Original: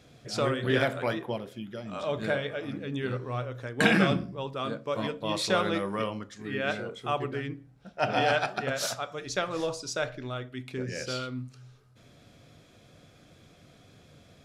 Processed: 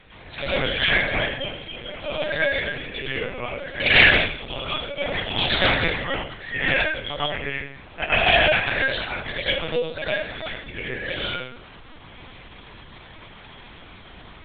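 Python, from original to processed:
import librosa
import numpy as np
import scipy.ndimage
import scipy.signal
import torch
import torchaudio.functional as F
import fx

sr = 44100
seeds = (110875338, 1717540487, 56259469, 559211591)

y = fx.spec_dropout(x, sr, seeds[0], share_pct=25)
y = scipy.signal.sosfilt(scipy.signal.butter(4, 340.0, 'highpass', fs=sr, output='sos'), y)
y = fx.high_shelf_res(y, sr, hz=1500.0, db=6.5, q=3.0)
y = fx.dmg_noise_colour(y, sr, seeds[1], colour='pink', level_db=-50.0)
y = fx.rev_plate(y, sr, seeds[2], rt60_s=0.55, hf_ratio=1.0, predelay_ms=85, drr_db=-8.5)
y = fx.lpc_vocoder(y, sr, seeds[3], excitation='pitch_kept', order=10)
y = fx.doppler_dist(y, sr, depth_ms=0.18)
y = F.gain(torch.from_numpy(y), -2.0).numpy()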